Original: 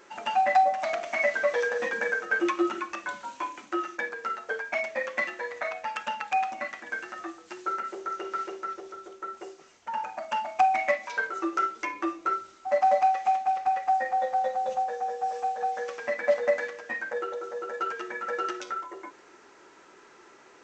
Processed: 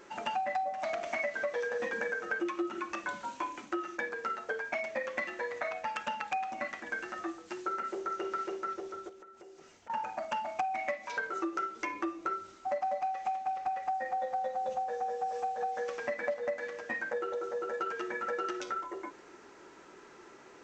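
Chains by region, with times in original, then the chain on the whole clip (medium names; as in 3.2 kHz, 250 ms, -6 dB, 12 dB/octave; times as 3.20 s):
9.09–9.90 s: band-stop 1.1 kHz, Q 13 + compression 8:1, threshold -50 dBFS
whole clip: bass shelf 400 Hz +7 dB; compression 6:1, threshold -29 dBFS; trim -2 dB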